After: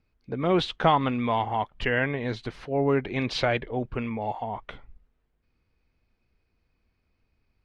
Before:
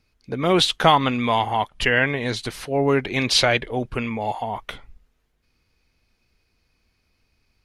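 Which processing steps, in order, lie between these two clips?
tape spacing loss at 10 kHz 25 dB; trim -3 dB

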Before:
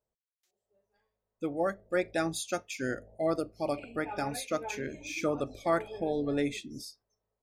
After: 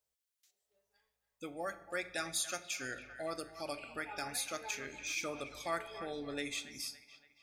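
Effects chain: tilt shelf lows -9 dB, about 1.2 kHz; feedback echo behind a band-pass 282 ms, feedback 40%, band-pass 1.5 kHz, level -12.5 dB; in parallel at +1.5 dB: compression, threshold -43 dBFS, peak gain reduction 17 dB; on the sum: peaking EQ 64 Hz +10.5 dB 0.27 oct; simulated room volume 380 m³, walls mixed, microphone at 0.32 m; trim -8.5 dB

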